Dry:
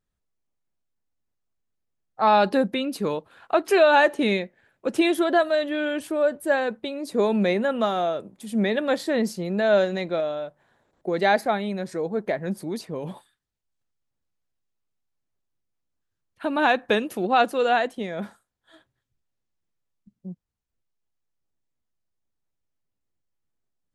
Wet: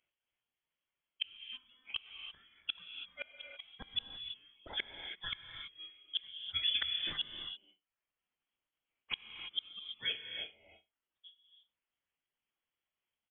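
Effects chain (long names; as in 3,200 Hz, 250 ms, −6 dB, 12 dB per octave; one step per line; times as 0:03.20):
Butterworth high-pass 570 Hz 36 dB per octave
reverb reduction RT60 1.4 s
downward compressor 3 to 1, threshold −33 dBFS, peak gain reduction 14 dB
on a send: flutter between parallel walls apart 4.9 metres, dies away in 0.4 s
on the sum: tempo change 1.8×
gate with flip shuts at −27 dBFS, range −36 dB
reverb whose tail is shaped and stops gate 360 ms rising, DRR 5 dB
voice inversion scrambler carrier 3,900 Hz
level +4.5 dB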